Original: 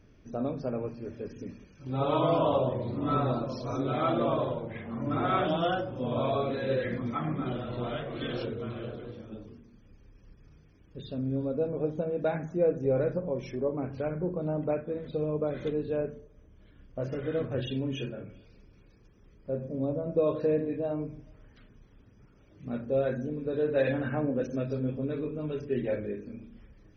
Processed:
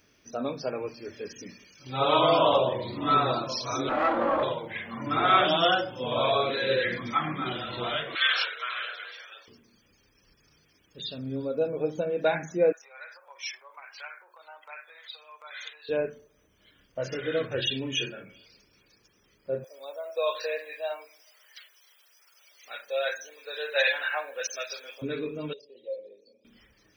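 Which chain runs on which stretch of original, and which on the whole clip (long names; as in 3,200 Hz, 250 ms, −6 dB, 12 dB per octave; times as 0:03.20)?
0:03.89–0:04.43: lower of the sound and its delayed copy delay 3.6 ms + low-pass filter 1,200 Hz + envelope flattener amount 50%
0:08.15–0:09.48: Bessel high-pass filter 840 Hz, order 6 + parametric band 1,700 Hz +10.5 dB 1.5 octaves
0:12.72–0:15.89: downward compressor 4 to 1, threshold −30 dBFS + high-pass filter 920 Hz 24 dB per octave
0:19.64–0:25.02: high-pass filter 540 Hz 24 dB per octave + spectral tilt +2.5 dB per octave + delay with a high-pass on its return 162 ms, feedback 57%, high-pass 4,300 Hz, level −21 dB
0:25.53–0:26.45: downward compressor 4 to 1, threshold −31 dBFS + pair of resonant band-passes 1,500 Hz, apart 3 octaves
whole clip: noise reduction from a noise print of the clip's start 6 dB; spectral tilt +4 dB per octave; level +7 dB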